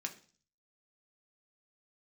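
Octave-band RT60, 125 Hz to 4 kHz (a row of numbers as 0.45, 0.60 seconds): 0.70, 0.55, 0.45, 0.40, 0.40, 0.55 seconds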